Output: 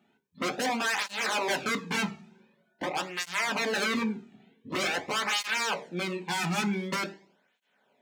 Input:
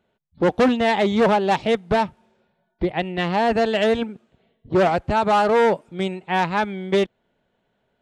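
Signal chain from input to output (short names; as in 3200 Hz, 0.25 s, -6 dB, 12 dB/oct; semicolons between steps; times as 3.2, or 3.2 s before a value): dynamic EQ 5900 Hz, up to -6 dB, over -42 dBFS, Q 0.83; in parallel at -2.5 dB: compressor 6:1, threshold -31 dBFS, peak gain reduction 16 dB; on the sum: wavefolder -21.5 dBFS; reverb RT60 0.45 s, pre-delay 3 ms, DRR 5 dB; tape flanging out of phase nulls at 0.46 Hz, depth 2 ms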